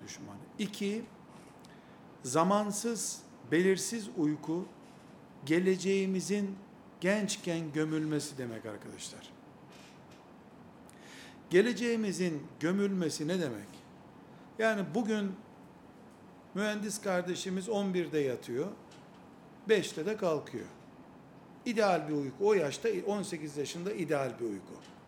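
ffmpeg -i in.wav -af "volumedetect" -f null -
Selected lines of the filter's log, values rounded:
mean_volume: -34.3 dB
max_volume: -12.7 dB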